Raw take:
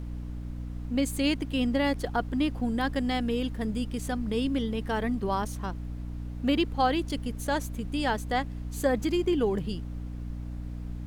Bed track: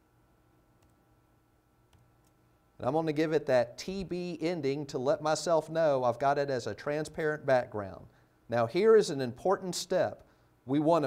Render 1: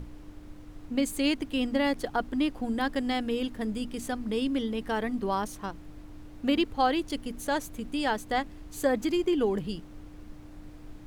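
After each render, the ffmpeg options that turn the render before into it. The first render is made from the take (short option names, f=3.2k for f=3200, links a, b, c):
-af "bandreject=f=60:t=h:w=6,bandreject=f=120:t=h:w=6,bandreject=f=180:t=h:w=6,bandreject=f=240:t=h:w=6"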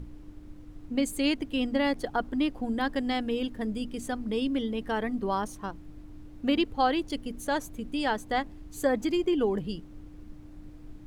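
-af "afftdn=nr=6:nf=-47"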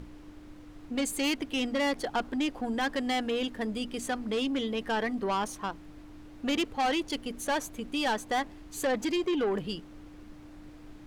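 -filter_complex "[0:a]asplit=2[a][b];[b]highpass=f=720:p=1,volume=12dB,asoftclip=type=tanh:threshold=-13dB[c];[a][c]amix=inputs=2:normalize=0,lowpass=f=6.5k:p=1,volume=-6dB,asoftclip=type=tanh:threshold=-23.5dB"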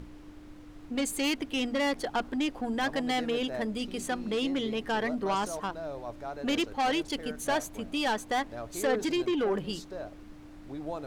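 -filter_complex "[1:a]volume=-11.5dB[a];[0:a][a]amix=inputs=2:normalize=0"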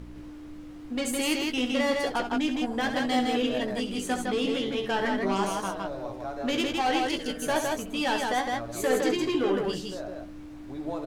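-filter_complex "[0:a]asplit=2[a][b];[b]adelay=16,volume=-6.5dB[c];[a][c]amix=inputs=2:normalize=0,aecho=1:1:67.06|160.3:0.355|0.708"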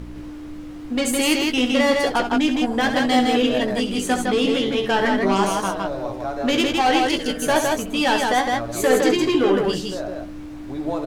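-af "volume=8dB"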